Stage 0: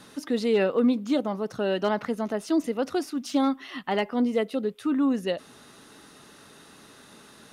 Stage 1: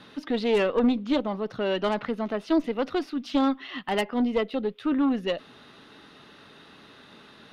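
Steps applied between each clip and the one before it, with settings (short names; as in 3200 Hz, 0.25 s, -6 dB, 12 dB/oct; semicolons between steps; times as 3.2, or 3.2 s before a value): resonant high shelf 5300 Hz -14 dB, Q 1.5; added harmonics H 4 -13 dB, 6 -18 dB, 8 -30 dB, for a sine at -12.5 dBFS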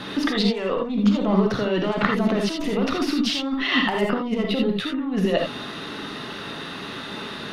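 negative-ratio compressor -33 dBFS, ratio -1; non-linear reverb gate 0.1 s rising, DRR 1.5 dB; gain +8 dB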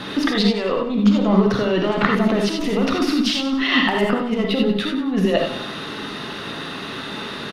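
feedback echo 97 ms, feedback 43%, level -11 dB; gain +3 dB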